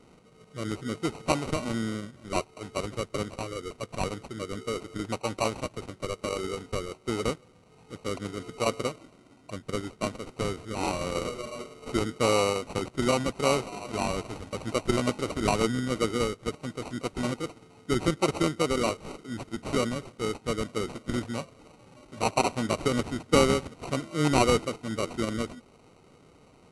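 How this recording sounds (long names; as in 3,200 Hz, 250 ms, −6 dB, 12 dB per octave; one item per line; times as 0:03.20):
aliases and images of a low sample rate 1,700 Hz, jitter 0%
AAC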